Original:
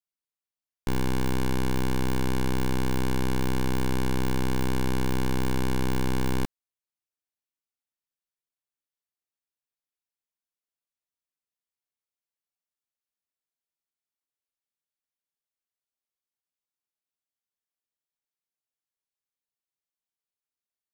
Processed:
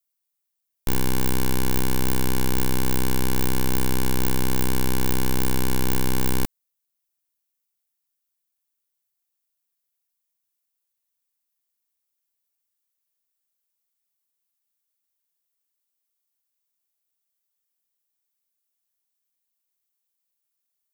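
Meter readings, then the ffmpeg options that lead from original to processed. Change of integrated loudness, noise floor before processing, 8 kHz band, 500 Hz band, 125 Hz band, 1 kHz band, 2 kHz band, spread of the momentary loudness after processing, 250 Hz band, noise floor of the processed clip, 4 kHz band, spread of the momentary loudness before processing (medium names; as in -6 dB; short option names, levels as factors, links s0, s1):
+3.5 dB, under -85 dBFS, +10.0 dB, +1.5 dB, +1.5 dB, +2.0 dB, +3.0 dB, 1 LU, +1.5 dB, -80 dBFS, +5.5 dB, 1 LU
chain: -af "aeval=exprs='0.0708*(cos(1*acos(clip(val(0)/0.0708,-1,1)))-cos(1*PI/2))+0.0282*(cos(8*acos(clip(val(0)/0.0708,-1,1)))-cos(8*PI/2))':c=same,aemphasis=mode=production:type=50kf,volume=1.19"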